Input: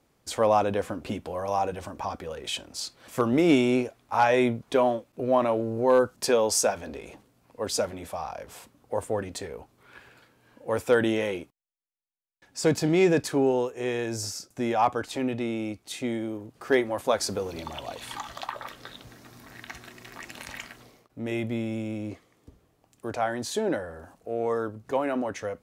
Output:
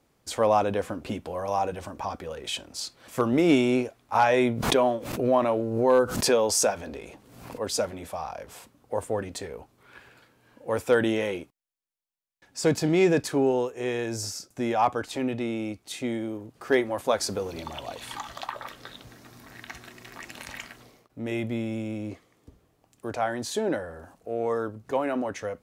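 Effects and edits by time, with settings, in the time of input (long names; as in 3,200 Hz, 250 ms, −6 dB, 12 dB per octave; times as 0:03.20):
0:04.15–0:07.61: background raised ahead of every attack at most 61 dB per second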